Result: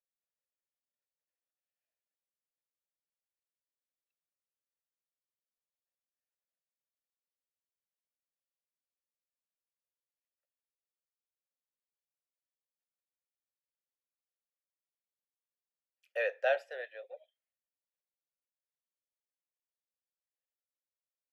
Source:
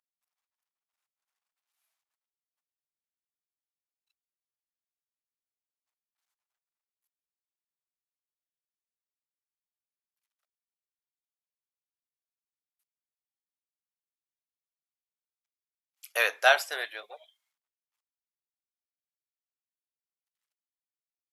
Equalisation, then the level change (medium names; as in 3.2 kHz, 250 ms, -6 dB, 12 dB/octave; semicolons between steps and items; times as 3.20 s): vowel filter e; high-pass 410 Hz; resonant high shelf 1.5 kHz -6.5 dB, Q 1.5; +5.5 dB